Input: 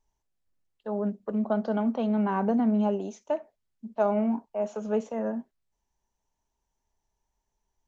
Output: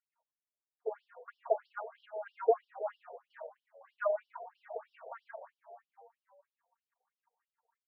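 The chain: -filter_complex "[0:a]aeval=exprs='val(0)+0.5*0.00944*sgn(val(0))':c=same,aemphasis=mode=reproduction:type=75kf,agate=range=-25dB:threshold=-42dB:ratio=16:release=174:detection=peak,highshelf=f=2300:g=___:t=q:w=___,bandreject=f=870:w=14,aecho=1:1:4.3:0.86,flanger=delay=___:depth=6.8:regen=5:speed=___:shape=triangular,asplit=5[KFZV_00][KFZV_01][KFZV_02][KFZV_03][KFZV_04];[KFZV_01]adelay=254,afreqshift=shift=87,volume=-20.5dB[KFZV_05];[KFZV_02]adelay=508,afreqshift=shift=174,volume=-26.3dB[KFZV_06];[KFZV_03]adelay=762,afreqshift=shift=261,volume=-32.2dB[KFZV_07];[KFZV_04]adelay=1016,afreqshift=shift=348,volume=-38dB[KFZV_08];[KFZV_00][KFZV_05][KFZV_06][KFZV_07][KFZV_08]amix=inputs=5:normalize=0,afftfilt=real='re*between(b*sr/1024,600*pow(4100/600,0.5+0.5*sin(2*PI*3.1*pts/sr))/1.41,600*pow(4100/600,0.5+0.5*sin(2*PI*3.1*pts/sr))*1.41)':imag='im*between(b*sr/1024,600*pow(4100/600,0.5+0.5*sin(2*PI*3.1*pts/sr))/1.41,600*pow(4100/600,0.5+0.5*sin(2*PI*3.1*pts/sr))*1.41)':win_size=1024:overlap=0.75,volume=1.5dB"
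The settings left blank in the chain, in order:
-12.5, 1.5, 2.1, 0.41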